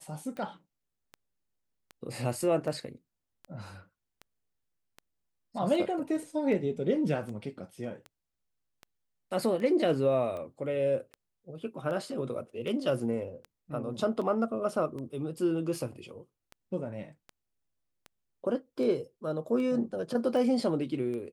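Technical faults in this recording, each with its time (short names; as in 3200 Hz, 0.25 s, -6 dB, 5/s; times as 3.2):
tick 78 rpm -29 dBFS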